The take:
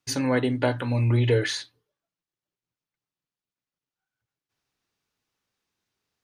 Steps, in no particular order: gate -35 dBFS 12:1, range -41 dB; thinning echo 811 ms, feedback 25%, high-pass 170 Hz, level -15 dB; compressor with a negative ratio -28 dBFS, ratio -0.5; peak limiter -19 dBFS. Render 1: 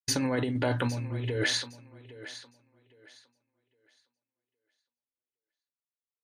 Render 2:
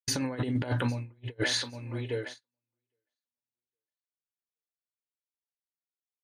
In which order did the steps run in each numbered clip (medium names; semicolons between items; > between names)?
peak limiter > compressor with a negative ratio > gate > thinning echo; thinning echo > compressor with a negative ratio > gate > peak limiter